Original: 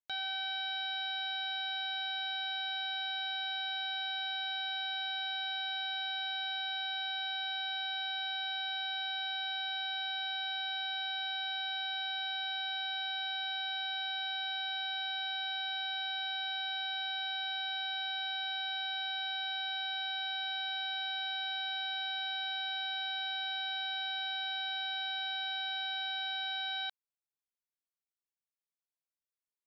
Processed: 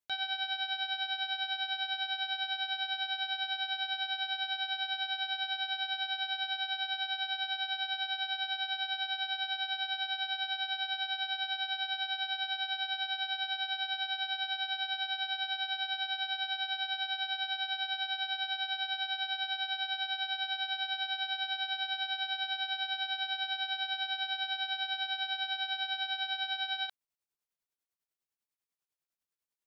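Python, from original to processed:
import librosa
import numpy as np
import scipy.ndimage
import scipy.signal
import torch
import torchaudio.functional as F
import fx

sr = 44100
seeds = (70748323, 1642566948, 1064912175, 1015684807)

y = fx.tremolo_shape(x, sr, shape='triangle', hz=10.0, depth_pct=80)
y = F.gain(torch.from_numpy(y), 5.5).numpy()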